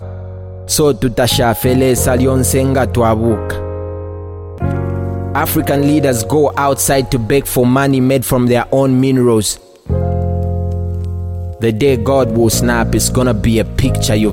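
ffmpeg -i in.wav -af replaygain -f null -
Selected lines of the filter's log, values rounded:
track_gain = -4.6 dB
track_peak = 0.542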